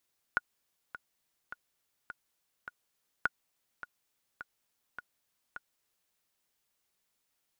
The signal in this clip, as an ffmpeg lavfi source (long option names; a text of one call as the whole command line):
ffmpeg -f lavfi -i "aevalsrc='pow(10,(-14-14.5*gte(mod(t,5*60/104),60/104))/20)*sin(2*PI*1450*mod(t,60/104))*exp(-6.91*mod(t,60/104)/0.03)':duration=5.76:sample_rate=44100" out.wav